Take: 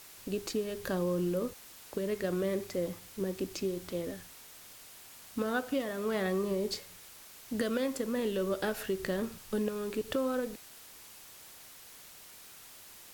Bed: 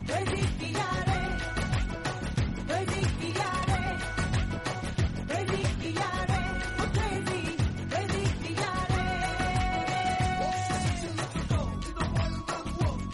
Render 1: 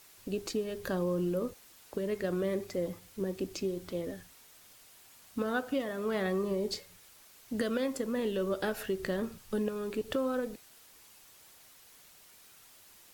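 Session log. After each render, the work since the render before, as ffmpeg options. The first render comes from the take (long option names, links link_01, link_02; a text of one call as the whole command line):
ffmpeg -i in.wav -af "afftdn=noise_reduction=6:noise_floor=-52" out.wav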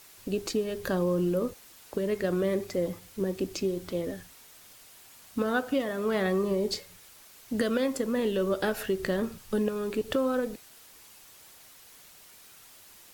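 ffmpeg -i in.wav -af "volume=4.5dB" out.wav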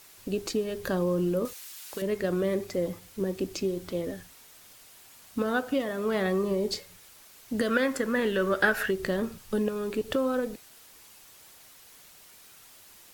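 ffmpeg -i in.wav -filter_complex "[0:a]asettb=1/sr,asplit=3[link_01][link_02][link_03];[link_01]atrim=end=1.454[link_04];[link_02]atrim=start=1.45:end=2.02,asetpts=PTS-STARTPTS,afade=type=in:duration=0.004:curve=qsin,afade=type=out:start_time=0.566:duration=0.004:curve=qsin,tiltshelf=frequency=970:gain=-9.5[link_05];[link_03]atrim=start=2.016[link_06];[link_04][link_05]acrossfade=duration=0.004:curve1=hsin:curve2=qsin[link_07];[link_07][link_06]acrossfade=duration=0.004:curve1=qsin:curve2=hsin,asettb=1/sr,asplit=3[link_08][link_09][link_10];[link_08]atrim=end=7.684[link_11];[link_09]atrim=start=7.68:end=8.91,asetpts=PTS-STARTPTS,afade=type=in:duration=0.004:curve=qsin,afade=type=out:start_time=1.226:duration=0.004:curve=qsin,equalizer=frequency=1600:width=1.6:gain=12.5[link_12];[link_10]atrim=start=8.906[link_13];[link_11][link_12]acrossfade=duration=0.004:curve1=hsin:curve2=qsin[link_14];[link_14][link_13]acrossfade=duration=0.004:curve1=qsin:curve2=hsin" out.wav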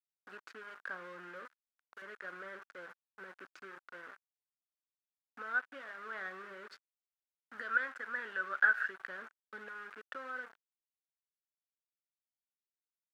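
ffmpeg -i in.wav -af "aeval=exprs='val(0)*gte(abs(val(0)),0.0237)':channel_layout=same,bandpass=frequency=1500:width_type=q:width=5.4:csg=0" out.wav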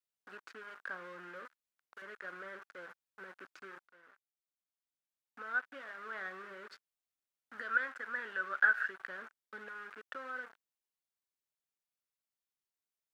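ffmpeg -i in.wav -filter_complex "[0:a]asplit=2[link_01][link_02];[link_01]atrim=end=3.87,asetpts=PTS-STARTPTS,afade=type=out:start_time=3.866:duration=0.004:curve=hsin:silence=0.158489[link_03];[link_02]atrim=start=3.87,asetpts=PTS-STARTPTS,afade=type=in:duration=1.89:silence=0.158489[link_04];[link_03][link_04]concat=n=2:v=0:a=1" out.wav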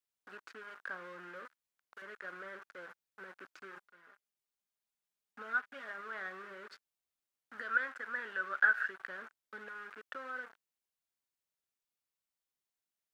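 ffmpeg -i in.wav -filter_complex "[0:a]asettb=1/sr,asplit=3[link_01][link_02][link_03];[link_01]atrim=end=3.754[link_04];[link_02]atrim=start=3.75:end=6.01,asetpts=PTS-STARTPTS,afade=type=in:duration=0.004:curve=qsin,afade=type=out:start_time=2.256:duration=0.004:curve=qsin,aecho=1:1:4.9:0.65,atrim=end_sample=99666[link_05];[link_03]atrim=start=6.006[link_06];[link_04][link_05]acrossfade=duration=0.004:curve1=hsin:curve2=qsin[link_07];[link_07][link_06]acrossfade=duration=0.004:curve1=qsin:curve2=hsin" out.wav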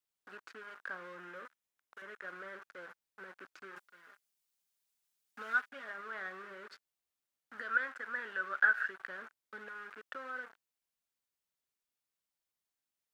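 ffmpeg -i in.wav -filter_complex "[0:a]asettb=1/sr,asplit=3[link_01][link_02][link_03];[link_01]atrim=end=1.154[link_04];[link_02]atrim=start=1.15:end=2.28,asetpts=PTS-STARTPTS,afade=type=in:duration=0.004:curve=qsin,afade=type=out:start_time=1.126:duration=0.004:curve=qsin,bandreject=frequency=4500:width=12[link_05];[link_03]atrim=start=2.276[link_06];[link_04][link_05]acrossfade=duration=0.004:curve1=hsin:curve2=qsin[link_07];[link_07][link_06]acrossfade=duration=0.004:curve1=qsin:curve2=hsin,asettb=1/sr,asplit=3[link_08][link_09][link_10];[link_08]atrim=end=3.764[link_11];[link_09]atrim=start=3.76:end=5.69,asetpts=PTS-STARTPTS,afade=type=in:duration=0.004:curve=qsin,afade=type=out:start_time=1.926:duration=0.004:curve=qsin,highshelf=frequency=2600:gain=9[link_12];[link_10]atrim=start=5.686[link_13];[link_11][link_12]acrossfade=duration=0.004:curve1=hsin:curve2=qsin[link_14];[link_14][link_13]acrossfade=duration=0.004:curve1=qsin:curve2=hsin" out.wav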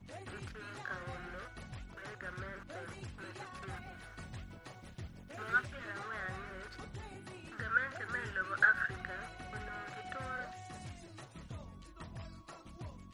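ffmpeg -i in.wav -i bed.wav -filter_complex "[1:a]volume=-19dB[link_01];[0:a][link_01]amix=inputs=2:normalize=0" out.wav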